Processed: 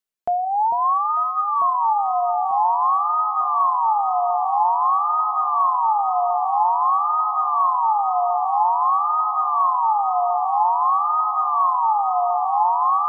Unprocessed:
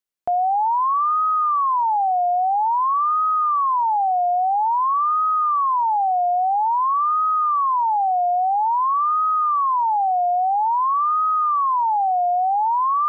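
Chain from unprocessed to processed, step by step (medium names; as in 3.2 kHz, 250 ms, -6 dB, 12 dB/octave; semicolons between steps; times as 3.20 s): on a send at -11 dB: reverberation RT60 0.85 s, pre-delay 5 ms; on the sum: reverb removal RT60 0.68 s; 10.74–12.15 s: tone controls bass +6 dB, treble +12 dB; echo whose repeats swap between lows and highs 447 ms, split 860 Hz, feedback 83%, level -6.5 dB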